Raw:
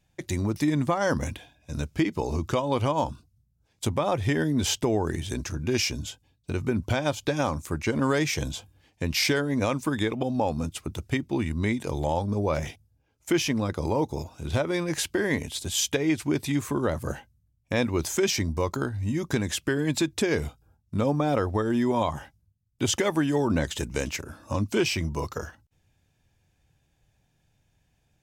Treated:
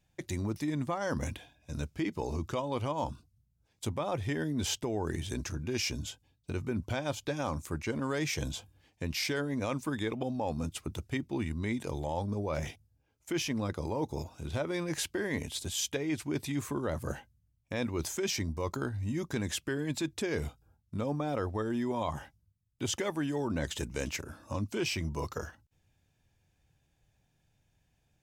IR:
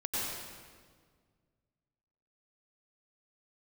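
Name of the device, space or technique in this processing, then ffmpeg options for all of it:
compression on the reversed sound: -af "areverse,acompressor=threshold=0.0562:ratio=6,areverse,volume=0.631"

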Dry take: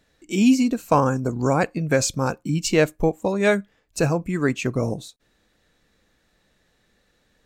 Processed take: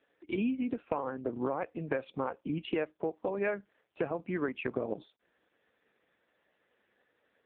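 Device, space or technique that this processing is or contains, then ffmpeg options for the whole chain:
voicemail: -af "highpass=320,lowpass=2700,acompressor=threshold=0.0398:ratio=10" -ar 8000 -c:a libopencore_amrnb -b:a 4750

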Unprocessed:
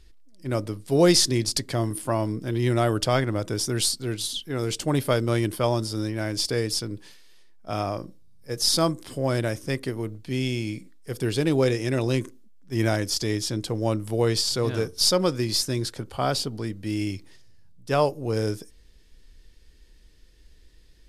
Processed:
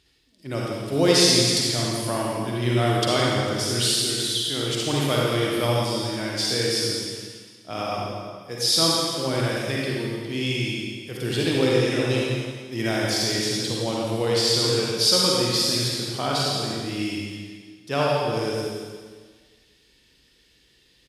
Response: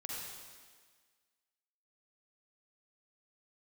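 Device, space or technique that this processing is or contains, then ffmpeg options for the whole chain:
PA in a hall: -filter_complex "[0:a]highpass=110,equalizer=f=3200:t=o:w=1.1:g=7,aecho=1:1:168:0.316[s0];[1:a]atrim=start_sample=2205[s1];[s0][s1]afir=irnorm=-1:irlink=0,volume=1.19"

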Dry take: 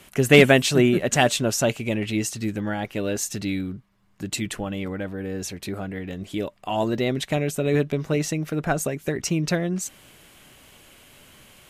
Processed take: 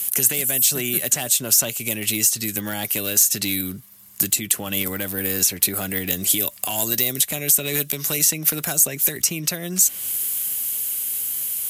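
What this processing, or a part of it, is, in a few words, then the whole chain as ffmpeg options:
FM broadcast chain: -filter_complex "[0:a]highpass=f=59:w=0.5412,highpass=f=59:w=1.3066,dynaudnorm=f=250:g=21:m=3.76,acrossover=split=170|1100|3000|6000[s0][s1][s2][s3][s4];[s0]acompressor=threshold=0.0158:ratio=4[s5];[s1]acompressor=threshold=0.0398:ratio=4[s6];[s2]acompressor=threshold=0.0141:ratio=4[s7];[s3]acompressor=threshold=0.00794:ratio=4[s8];[s4]acompressor=threshold=0.00631:ratio=4[s9];[s5][s6][s7][s8][s9]amix=inputs=5:normalize=0,aemphasis=mode=production:type=75fm,alimiter=limit=0.141:level=0:latency=1:release=254,asoftclip=type=hard:threshold=0.0944,lowpass=f=15000:w=0.5412,lowpass=f=15000:w=1.3066,aemphasis=mode=production:type=75fm,volume=1.19"

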